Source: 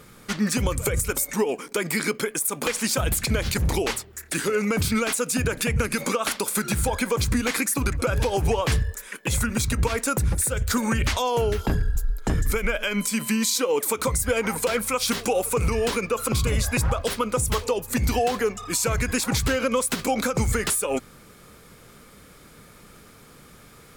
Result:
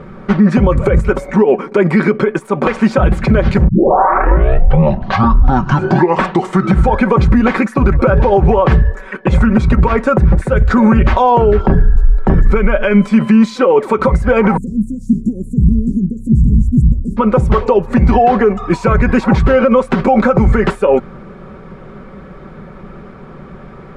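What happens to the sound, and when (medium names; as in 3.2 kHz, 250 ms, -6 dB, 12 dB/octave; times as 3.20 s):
3.68 s: tape start 3.23 s
14.57–17.17 s: Chebyshev band-stop 280–7200 Hz, order 4
whole clip: low-pass 1.2 kHz 12 dB/octave; comb 5.3 ms, depth 56%; loudness maximiser +17.5 dB; trim -1 dB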